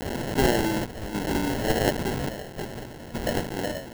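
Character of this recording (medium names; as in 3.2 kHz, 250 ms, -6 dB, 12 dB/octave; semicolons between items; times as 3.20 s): a quantiser's noise floor 6-bit, dither triangular; random-step tremolo, depth 75%; aliases and images of a low sample rate 1.2 kHz, jitter 0%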